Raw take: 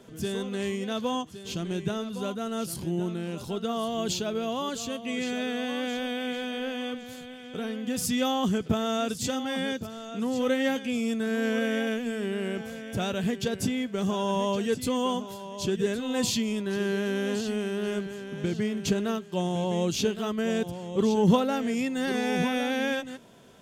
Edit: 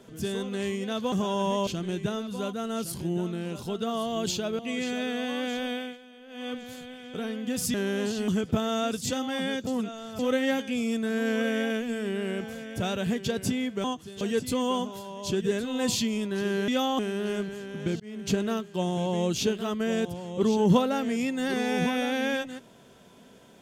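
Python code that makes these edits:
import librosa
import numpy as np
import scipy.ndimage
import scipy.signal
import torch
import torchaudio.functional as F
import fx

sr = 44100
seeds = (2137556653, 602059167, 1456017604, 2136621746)

y = fx.edit(x, sr, fx.swap(start_s=1.12, length_s=0.37, other_s=14.01, other_length_s=0.55),
    fx.cut(start_s=4.41, length_s=0.58),
    fx.fade_down_up(start_s=6.14, length_s=0.78, db=-17.5, fade_s=0.24),
    fx.swap(start_s=8.14, length_s=0.31, other_s=17.03, other_length_s=0.54),
    fx.reverse_span(start_s=9.84, length_s=0.52),
    fx.fade_in_span(start_s=18.58, length_s=0.34), tone=tone)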